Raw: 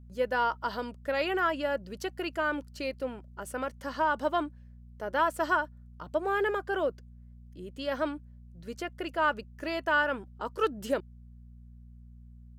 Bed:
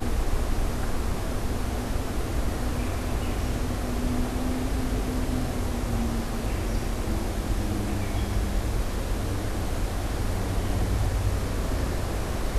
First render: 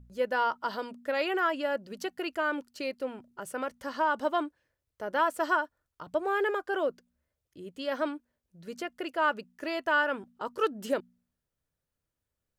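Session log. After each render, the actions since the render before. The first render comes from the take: de-hum 60 Hz, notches 4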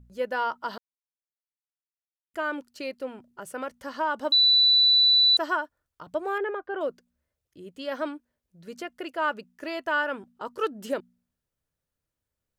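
0.78–2.34 mute; 4.32–5.37 bleep 3970 Hz -15.5 dBFS; 6.38–6.81 air absorption 400 m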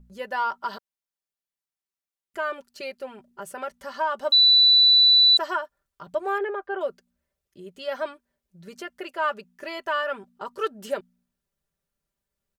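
dynamic EQ 240 Hz, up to -7 dB, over -49 dBFS, Q 1.4; comb 5.1 ms, depth 66%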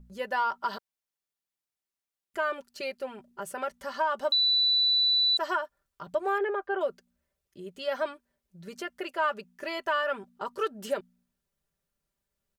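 limiter -16 dBFS, peak gain reduction 4 dB; compressor 4:1, threshold -23 dBFS, peak gain reduction 4.5 dB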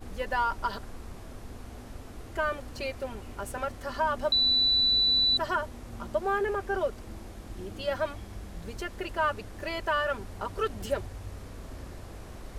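add bed -15 dB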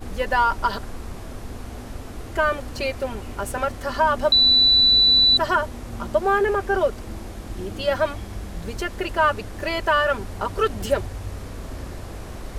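gain +8.5 dB

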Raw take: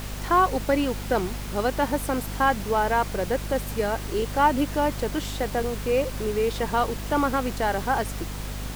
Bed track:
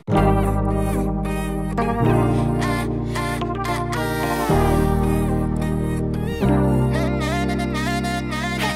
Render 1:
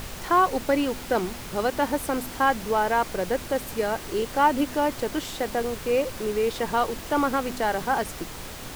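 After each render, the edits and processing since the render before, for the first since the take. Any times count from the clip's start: de-hum 50 Hz, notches 5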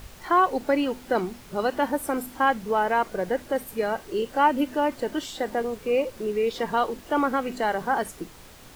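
noise print and reduce 10 dB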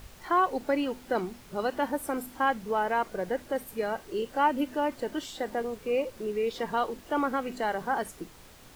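gain -4.5 dB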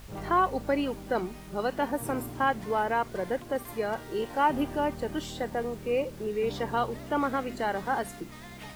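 add bed track -22.5 dB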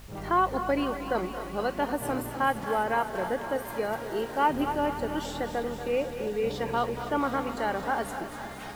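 thinning echo 0.256 s, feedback 76%, high-pass 460 Hz, level -11 dB; warbling echo 0.23 s, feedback 69%, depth 78 cents, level -13 dB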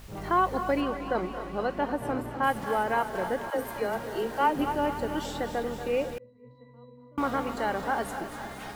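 0.8–2.42 LPF 4200 Hz -> 2000 Hz 6 dB/oct; 3.5–4.59 dispersion lows, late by 78 ms, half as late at 310 Hz; 6.18–7.18 octave resonator B, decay 0.68 s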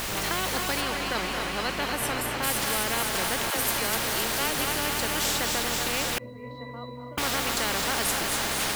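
spectral compressor 4:1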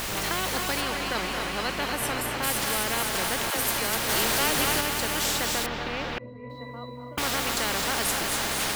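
4.09–4.81 power-law curve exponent 0.7; 5.66–6.5 air absorption 260 m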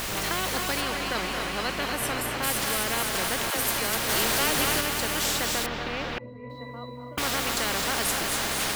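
notch 870 Hz, Q 27

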